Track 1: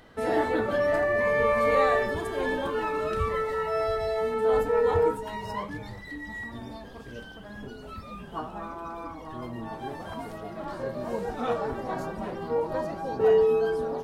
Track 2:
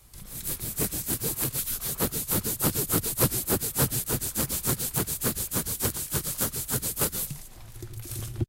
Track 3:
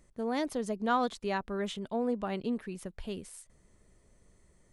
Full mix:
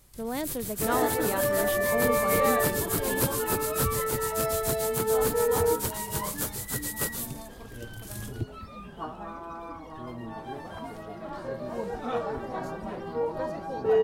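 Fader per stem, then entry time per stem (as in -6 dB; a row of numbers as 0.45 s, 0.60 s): -2.0 dB, -4.0 dB, -0.5 dB; 0.65 s, 0.00 s, 0.00 s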